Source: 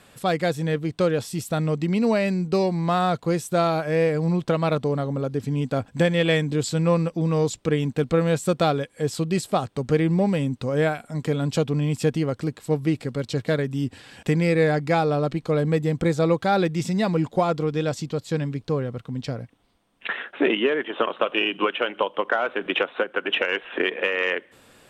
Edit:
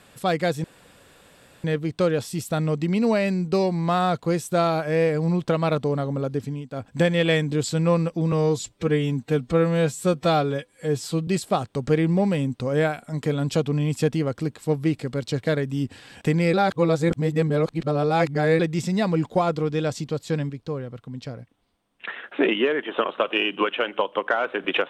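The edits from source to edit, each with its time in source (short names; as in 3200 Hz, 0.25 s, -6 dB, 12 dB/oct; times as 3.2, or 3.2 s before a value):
0.64 insert room tone 1.00 s
5.37–5.97 dip -12 dB, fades 0.27 s
7.32–9.29 stretch 1.5×
14.55–16.61 reverse
18.51–20.25 gain -5 dB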